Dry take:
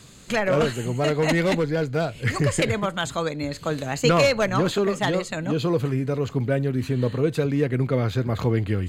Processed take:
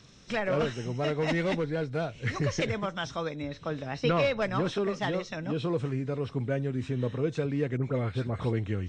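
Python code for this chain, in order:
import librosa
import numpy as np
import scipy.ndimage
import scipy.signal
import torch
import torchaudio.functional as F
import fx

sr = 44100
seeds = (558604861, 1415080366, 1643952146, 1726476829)

y = fx.freq_compress(x, sr, knee_hz=3300.0, ratio=1.5)
y = fx.air_absorb(y, sr, metres=86.0, at=(3.42, 4.42))
y = fx.dispersion(y, sr, late='highs', ms=66.0, hz=2100.0, at=(7.77, 8.53))
y = F.gain(torch.from_numpy(y), -7.0).numpy()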